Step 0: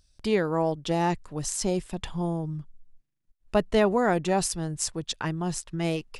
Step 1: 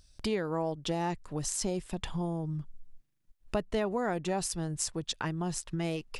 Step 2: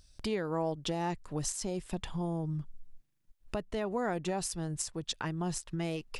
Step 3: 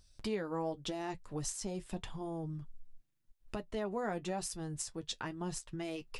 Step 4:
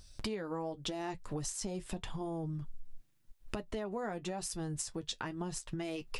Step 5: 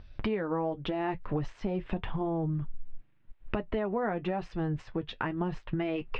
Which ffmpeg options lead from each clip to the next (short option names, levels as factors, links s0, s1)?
-af "acompressor=threshold=0.0141:ratio=2.5,volume=1.5"
-af "alimiter=limit=0.075:level=0:latency=1:release=331"
-af "flanger=delay=8.6:depth=1.3:regen=-47:speed=0.88:shape=sinusoidal"
-af "acompressor=threshold=0.00631:ratio=6,volume=2.66"
-af "lowpass=f=2700:w=0.5412,lowpass=f=2700:w=1.3066,volume=2.37"